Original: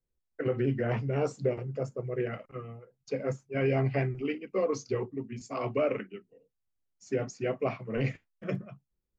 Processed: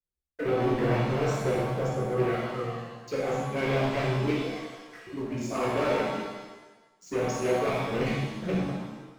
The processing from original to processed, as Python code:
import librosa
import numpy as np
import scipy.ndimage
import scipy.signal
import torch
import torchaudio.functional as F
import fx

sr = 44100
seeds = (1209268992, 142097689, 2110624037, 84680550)

y = fx.ladder_bandpass(x, sr, hz=1800.0, resonance_pct=75, at=(4.47, 5.07))
y = fx.leveller(y, sr, passes=3)
y = fx.rev_shimmer(y, sr, seeds[0], rt60_s=1.1, semitones=7, shimmer_db=-8, drr_db=-5.0)
y = F.gain(torch.from_numpy(y), -9.0).numpy()